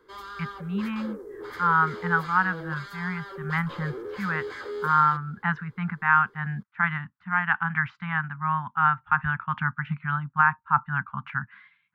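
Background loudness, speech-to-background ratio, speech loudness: −38.0 LKFS, 12.0 dB, −26.0 LKFS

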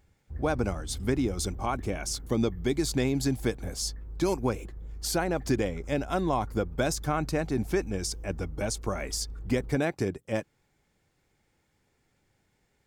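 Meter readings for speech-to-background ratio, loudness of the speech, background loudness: 12.5 dB, −30.5 LKFS, −43.0 LKFS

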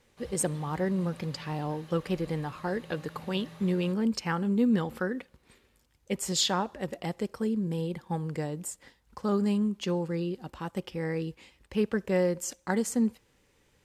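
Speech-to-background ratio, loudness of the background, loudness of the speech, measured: 19.0 dB, −50.0 LKFS, −31.0 LKFS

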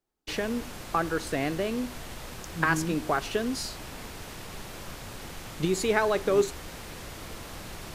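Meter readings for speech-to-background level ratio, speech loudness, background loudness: 12.0 dB, −29.0 LKFS, −41.0 LKFS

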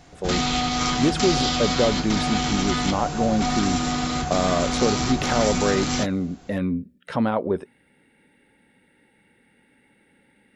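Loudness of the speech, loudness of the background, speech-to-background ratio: −25.5 LKFS, −24.0 LKFS, −1.5 dB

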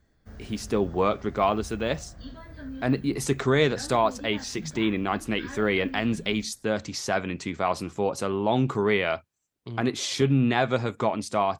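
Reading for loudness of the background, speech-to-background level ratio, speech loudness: −43.0 LKFS, 16.5 dB, −26.5 LKFS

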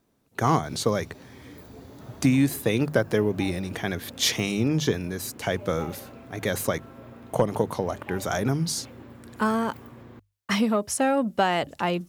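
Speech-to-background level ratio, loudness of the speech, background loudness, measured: 19.5 dB, −26.0 LKFS, −45.5 LKFS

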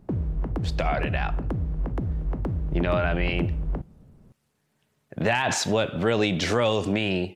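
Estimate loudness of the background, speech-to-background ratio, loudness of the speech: −30.0 LKFS, 4.5 dB, −25.5 LKFS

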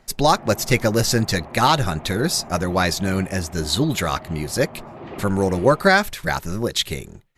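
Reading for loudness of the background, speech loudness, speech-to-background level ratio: −39.5 LKFS, −20.5 LKFS, 19.0 dB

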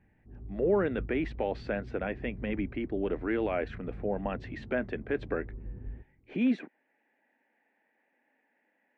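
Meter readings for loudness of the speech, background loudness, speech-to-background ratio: −33.0 LKFS, −45.5 LKFS, 12.5 dB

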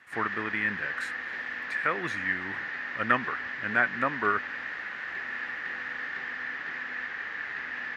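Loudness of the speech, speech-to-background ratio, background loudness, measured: −30.0 LKFS, 4.0 dB, −34.0 LKFS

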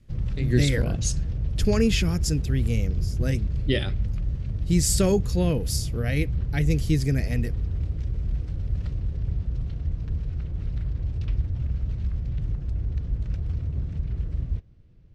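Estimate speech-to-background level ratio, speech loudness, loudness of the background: 3.5 dB, −26.0 LKFS, −29.5 LKFS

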